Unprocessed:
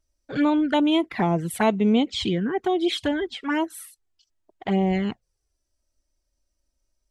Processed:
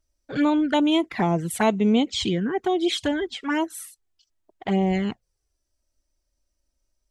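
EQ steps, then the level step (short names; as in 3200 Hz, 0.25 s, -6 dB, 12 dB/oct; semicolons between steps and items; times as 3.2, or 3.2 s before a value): dynamic EQ 6800 Hz, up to +7 dB, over -52 dBFS, Q 1.5; 0.0 dB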